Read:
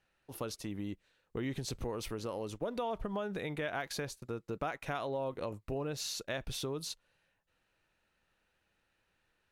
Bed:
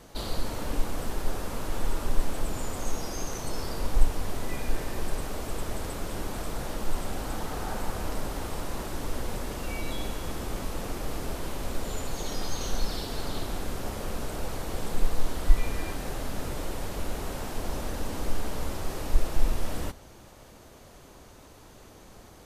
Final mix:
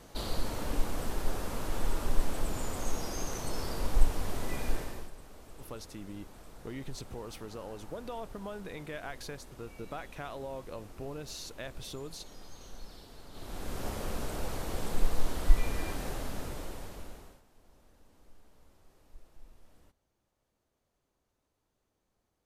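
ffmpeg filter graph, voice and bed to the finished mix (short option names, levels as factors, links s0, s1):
-filter_complex "[0:a]adelay=5300,volume=0.596[s0];[1:a]volume=4.47,afade=t=out:st=4.69:d=0.42:silence=0.16788,afade=t=in:st=13.31:d=0.55:silence=0.16788,afade=t=out:st=16.03:d=1.39:silence=0.0421697[s1];[s0][s1]amix=inputs=2:normalize=0"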